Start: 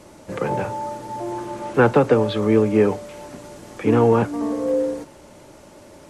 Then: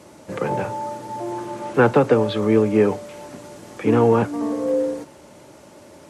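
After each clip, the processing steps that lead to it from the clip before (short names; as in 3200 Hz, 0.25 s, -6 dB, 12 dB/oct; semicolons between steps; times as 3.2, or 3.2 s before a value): HPF 83 Hz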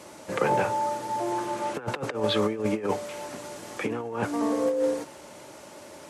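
low shelf 390 Hz -9.5 dB; negative-ratio compressor -25 dBFS, ratio -0.5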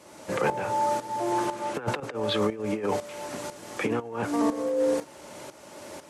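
limiter -19.5 dBFS, peak gain reduction 8 dB; tremolo saw up 2 Hz, depth 75%; gain +5 dB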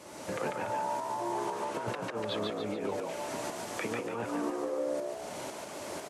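compressor 3:1, threshold -38 dBFS, peak gain reduction 13 dB; frequency-shifting echo 0.144 s, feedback 46%, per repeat +67 Hz, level -3 dB; gain +1.5 dB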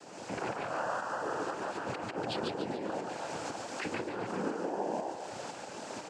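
noise vocoder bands 8; gain -1 dB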